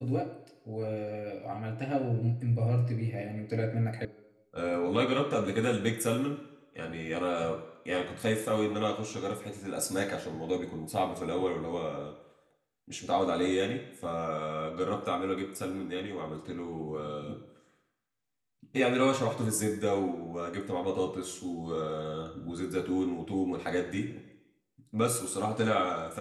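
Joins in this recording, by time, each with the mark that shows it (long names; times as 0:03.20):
0:04.05: cut off before it has died away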